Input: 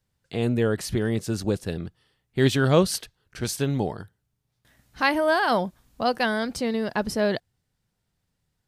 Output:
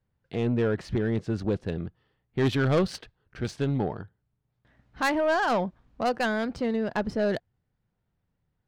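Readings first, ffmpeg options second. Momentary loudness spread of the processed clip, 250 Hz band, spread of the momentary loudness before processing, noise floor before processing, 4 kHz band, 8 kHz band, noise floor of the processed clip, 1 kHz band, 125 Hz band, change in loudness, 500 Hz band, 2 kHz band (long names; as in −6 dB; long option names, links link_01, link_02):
12 LU, −2.0 dB, 13 LU, −77 dBFS, −7.0 dB, −12.5 dB, −78 dBFS, −3.0 dB, −2.5 dB, −3.0 dB, −2.5 dB, −3.5 dB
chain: -af "adynamicsmooth=sensitivity=1.5:basefreq=2300,asoftclip=type=tanh:threshold=-17.5dB"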